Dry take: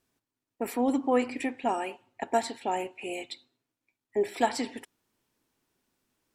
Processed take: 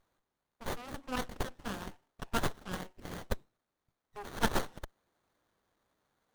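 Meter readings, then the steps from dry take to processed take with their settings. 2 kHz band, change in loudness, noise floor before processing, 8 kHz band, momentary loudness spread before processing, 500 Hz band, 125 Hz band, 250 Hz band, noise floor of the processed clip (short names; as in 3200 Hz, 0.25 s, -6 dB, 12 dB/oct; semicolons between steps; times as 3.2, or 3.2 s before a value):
-3.0 dB, -8.0 dB, under -85 dBFS, -3.0 dB, 11 LU, -12.0 dB, n/a, -10.0 dB, under -85 dBFS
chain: self-modulated delay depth 0.68 ms; differentiator; running maximum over 17 samples; gain +7.5 dB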